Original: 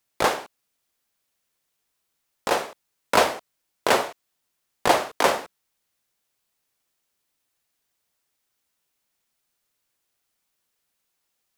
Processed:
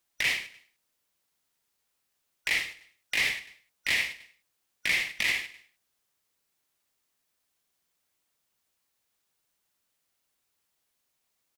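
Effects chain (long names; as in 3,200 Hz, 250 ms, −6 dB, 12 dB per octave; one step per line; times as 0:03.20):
band-splitting scrambler in four parts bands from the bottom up 4123
on a send: repeating echo 100 ms, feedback 45%, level −21 dB
on the sum: brickwall limiter −14 dBFS, peak gain reduction 11 dB
level −1.5 dB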